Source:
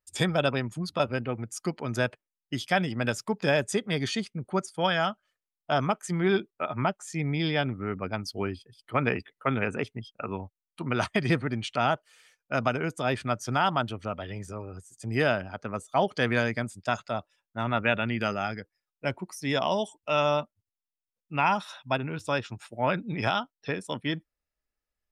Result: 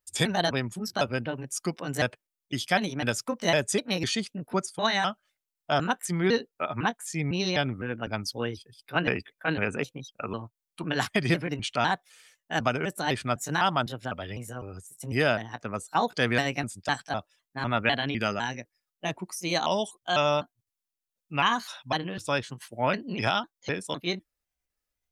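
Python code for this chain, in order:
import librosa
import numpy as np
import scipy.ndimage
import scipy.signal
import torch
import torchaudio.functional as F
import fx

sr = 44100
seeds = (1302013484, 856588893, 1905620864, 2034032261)

y = fx.pitch_trill(x, sr, semitones=3.0, every_ms=252)
y = fx.high_shelf(y, sr, hz=3900.0, db=6.5)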